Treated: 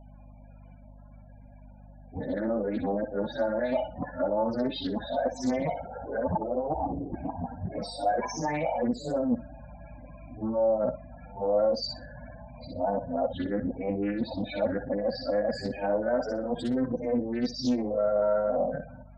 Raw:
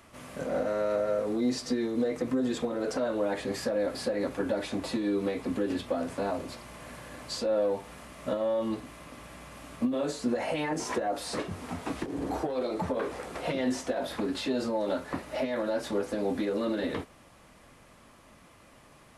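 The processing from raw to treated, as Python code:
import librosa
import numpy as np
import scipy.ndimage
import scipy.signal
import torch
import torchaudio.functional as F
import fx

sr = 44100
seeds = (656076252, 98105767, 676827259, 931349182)

p1 = x[::-1].copy()
p2 = p1 + 0.52 * np.pad(p1, (int(1.3 * sr / 1000.0), 0))[:len(p1)]
p3 = np.sign(p2) * np.maximum(np.abs(p2) - 10.0 ** (-45.0 / 20.0), 0.0)
p4 = p2 + F.gain(torch.from_numpy(p3), -9.0).numpy()
p5 = fx.spec_topn(p4, sr, count=16)
p6 = fx.add_hum(p5, sr, base_hz=50, snr_db=20)
p7 = p6 + fx.echo_thinned(p6, sr, ms=61, feedback_pct=17, hz=1200.0, wet_db=-3.5, dry=0)
y = fx.doppler_dist(p7, sr, depth_ms=0.3)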